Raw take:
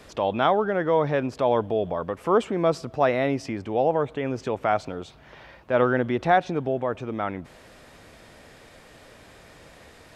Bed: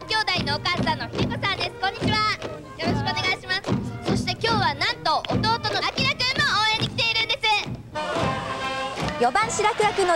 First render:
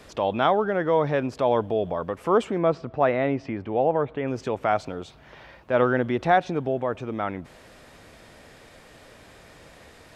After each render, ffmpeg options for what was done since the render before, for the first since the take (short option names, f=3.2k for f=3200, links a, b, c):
-filter_complex "[0:a]asettb=1/sr,asplit=3[a][b][c];[a]atrim=end=2.584[d];[b]atrim=start=2.58:end=4.28,asetpts=PTS-STARTPTS,afade=t=in:d=0.004:c=qsin,afade=t=out:st=1.696:d=0.004:c=qsin,lowpass=2.7k[e];[c]atrim=start=4.276[f];[d][e]acrossfade=d=0.004:c1=hsin:c2=qsin[g];[g][f]acrossfade=d=0.004:c1=qsin:c2=hsin"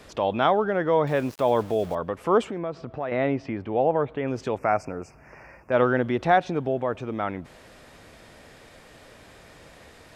-filter_complex "[0:a]asettb=1/sr,asplit=3[a][b][c];[a]atrim=end=1.074[d];[b]atrim=start=1.07:end=1.95,asetpts=PTS-STARTPTS,afade=t=in:d=0.004:c=qsin,afade=t=out:st=0.876:d=0.004:c=qsin,aeval=exprs='val(0)*gte(abs(val(0)),0.0112)':c=same[e];[c]atrim=start=1.946[f];[d][e]acrossfade=d=0.004:c1=hsin:c2=qsin[g];[g][f]acrossfade=d=0.004:c1=qsin:c2=hsin,asettb=1/sr,asplit=3[h][i][j];[h]atrim=end=2.494[k];[i]atrim=start=2.49:end=3.12,asetpts=PTS-STARTPTS,afade=t=in:d=0.004:c=qsin,afade=t=out:st=0.626:d=0.004:c=qsin,acompressor=threshold=-30dB:ratio=2.5:attack=3.2:release=140:knee=1:detection=peak[l];[j]atrim=start=3.116[m];[k][l]acrossfade=d=0.004:c1=hsin:c2=qsin[n];[n][m]acrossfade=d=0.004:c1=qsin:c2=hsin,asettb=1/sr,asplit=3[o][p][q];[o]atrim=end=4.584[r];[p]atrim=start=4.58:end=5.72,asetpts=PTS-STARTPTS,afade=t=in:d=0.004:c=qsin,afade=t=out:st=1.136:d=0.004:c=qsin,asuperstop=centerf=3600:order=12:qfactor=1.7[s];[q]atrim=start=5.716[t];[r][s]acrossfade=d=0.004:c1=hsin:c2=qsin[u];[u][t]acrossfade=d=0.004:c1=qsin:c2=hsin"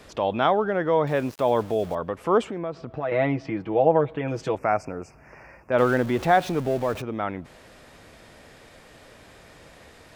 -filter_complex "[0:a]asettb=1/sr,asplit=3[a][b][c];[a]atrim=end=2.964[d];[b]atrim=start=2.96:end=4.55,asetpts=PTS-STARTPTS,afade=t=in:d=0.004:c=qsin,afade=t=out:st=1.586:d=0.004:c=qsin,aecho=1:1:6.2:0.72,atrim=end_sample=70119[e];[c]atrim=start=4.546[f];[d][e]acrossfade=d=0.004:c1=hsin:c2=qsin[g];[g][f]acrossfade=d=0.004:c1=qsin:c2=hsin,asettb=1/sr,asplit=3[h][i][j];[h]atrim=end=5.784[k];[i]atrim=start=5.78:end=7.02,asetpts=PTS-STARTPTS,afade=t=in:d=0.004:c=qsin,afade=t=out:st=1.236:d=0.004:c=qsin,aeval=exprs='val(0)+0.5*0.0211*sgn(val(0))':c=same[l];[j]atrim=start=7.016[m];[k][l]acrossfade=d=0.004:c1=hsin:c2=qsin[n];[n][m]acrossfade=d=0.004:c1=qsin:c2=hsin"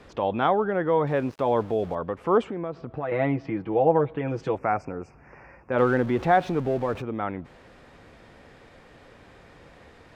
-af "aemphasis=mode=reproduction:type=75kf,bandreject=f=630:w=12"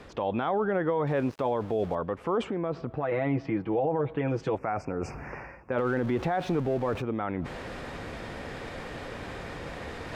-af "areverse,acompressor=mode=upward:threshold=-26dB:ratio=2.5,areverse,alimiter=limit=-18.5dB:level=0:latency=1:release=36"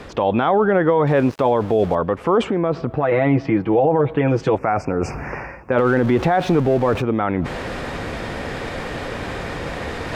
-af "volume=11dB"